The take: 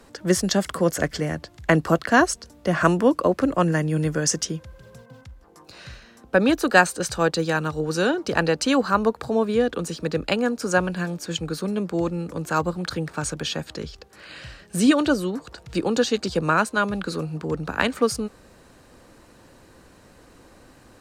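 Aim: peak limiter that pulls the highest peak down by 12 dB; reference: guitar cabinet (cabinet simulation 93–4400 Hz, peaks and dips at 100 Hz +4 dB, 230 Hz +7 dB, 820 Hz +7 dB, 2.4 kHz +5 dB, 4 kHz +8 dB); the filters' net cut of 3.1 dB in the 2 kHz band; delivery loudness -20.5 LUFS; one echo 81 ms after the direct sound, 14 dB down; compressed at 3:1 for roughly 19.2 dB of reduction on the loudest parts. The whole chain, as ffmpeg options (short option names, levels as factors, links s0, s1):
-af "equalizer=f=2000:t=o:g=-6,acompressor=threshold=0.01:ratio=3,alimiter=level_in=2.11:limit=0.0631:level=0:latency=1,volume=0.473,highpass=93,equalizer=f=100:t=q:w=4:g=4,equalizer=f=230:t=q:w=4:g=7,equalizer=f=820:t=q:w=4:g=7,equalizer=f=2400:t=q:w=4:g=5,equalizer=f=4000:t=q:w=4:g=8,lowpass=f=4400:w=0.5412,lowpass=f=4400:w=1.3066,aecho=1:1:81:0.2,volume=8.91"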